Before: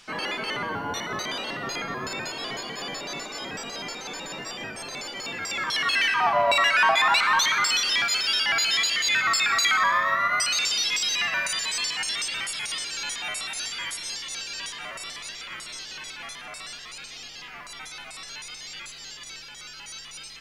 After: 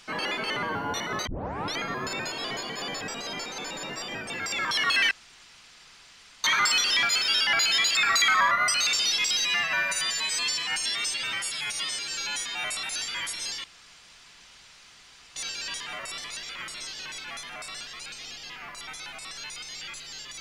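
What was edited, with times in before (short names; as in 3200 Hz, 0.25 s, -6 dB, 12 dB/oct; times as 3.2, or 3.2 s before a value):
1.27 tape start 0.52 s
3.01–3.5 cut
4.79–5.29 cut
6.1–7.43 room tone
8.94–9.38 cut
9.94–10.23 cut
11.12–13.28 stretch 1.5×
14.28 insert room tone 1.72 s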